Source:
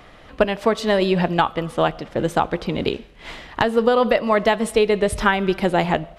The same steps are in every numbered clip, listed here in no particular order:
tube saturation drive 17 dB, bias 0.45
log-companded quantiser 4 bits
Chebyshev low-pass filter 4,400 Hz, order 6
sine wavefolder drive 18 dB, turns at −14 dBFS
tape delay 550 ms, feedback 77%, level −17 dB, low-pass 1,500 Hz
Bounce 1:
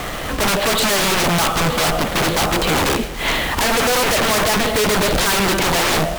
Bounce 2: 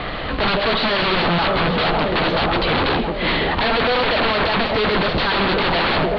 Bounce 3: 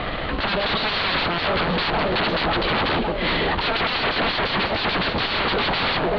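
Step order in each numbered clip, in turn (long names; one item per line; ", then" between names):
Chebyshev low-pass filter, then tube saturation, then log-companded quantiser, then sine wavefolder, then tape delay
tube saturation, then log-companded quantiser, then tape delay, then sine wavefolder, then Chebyshev low-pass filter
tape delay, then sine wavefolder, then tube saturation, then log-companded quantiser, then Chebyshev low-pass filter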